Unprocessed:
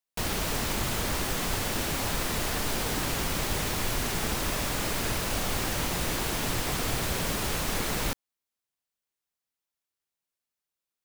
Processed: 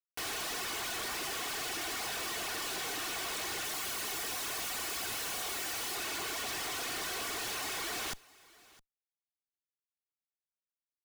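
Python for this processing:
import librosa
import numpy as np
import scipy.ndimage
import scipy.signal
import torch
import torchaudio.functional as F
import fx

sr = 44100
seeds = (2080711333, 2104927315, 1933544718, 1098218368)

y = fx.lower_of_two(x, sr, delay_ms=2.7)
y = fx.weighting(y, sr, curve='A')
y = fx.dereverb_blind(y, sr, rt60_s=1.1)
y = fx.high_shelf(y, sr, hz=9700.0, db=10.0, at=(3.64, 5.96))
y = fx.schmitt(y, sr, flips_db=-49.5)
y = y + 10.0 ** (-23.0 / 20.0) * np.pad(y, (int(660 * sr / 1000.0), 0))[:len(y)]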